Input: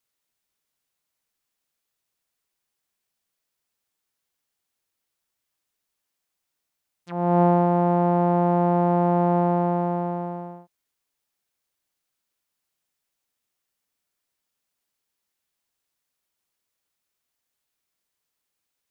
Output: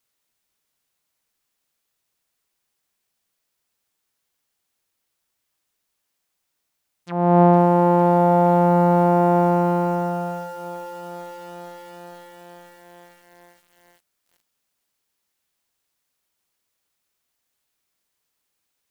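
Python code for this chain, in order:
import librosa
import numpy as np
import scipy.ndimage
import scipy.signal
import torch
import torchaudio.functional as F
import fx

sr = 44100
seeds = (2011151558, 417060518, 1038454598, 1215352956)

y = fx.echo_crushed(x, sr, ms=456, feedback_pct=80, bits=8, wet_db=-9.5)
y = y * librosa.db_to_amplitude(4.5)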